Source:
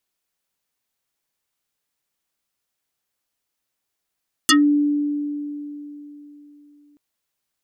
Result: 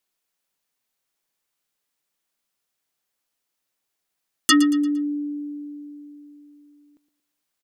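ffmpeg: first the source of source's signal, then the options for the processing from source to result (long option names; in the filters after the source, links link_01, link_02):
-f lavfi -i "aevalsrc='0.316*pow(10,-3*t/3.55)*sin(2*PI*292*t+7.5*pow(10,-3*t/0.14)*sin(2*PI*5.38*292*t))':duration=2.48:sample_rate=44100"
-af "equalizer=frequency=66:width=0.82:gain=-7,aecho=1:1:115|230|345|460:0.2|0.0798|0.0319|0.0128"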